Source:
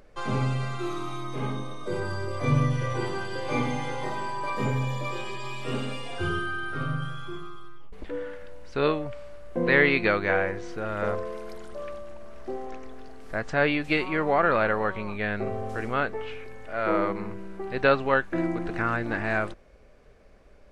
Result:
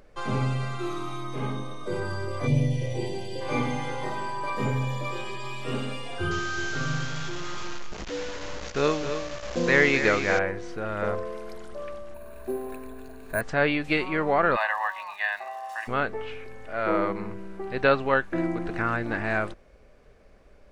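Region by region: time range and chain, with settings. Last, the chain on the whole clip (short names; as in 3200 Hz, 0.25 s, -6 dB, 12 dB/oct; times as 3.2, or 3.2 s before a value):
2.46–3.4 crackle 200/s -54 dBFS + Butterworth band-stop 1300 Hz, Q 0.93
6.31–10.39 requantised 6-bit, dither none + echo 0.264 s -9 dB + careless resampling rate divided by 3×, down none, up filtered
12.14–13.41 ripple EQ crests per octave 1.5, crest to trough 10 dB + careless resampling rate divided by 4×, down filtered, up hold
14.55–15.87 HPF 720 Hz 24 dB/oct + comb 1.1 ms, depth 94% + crackle 160/s -42 dBFS
whole clip: dry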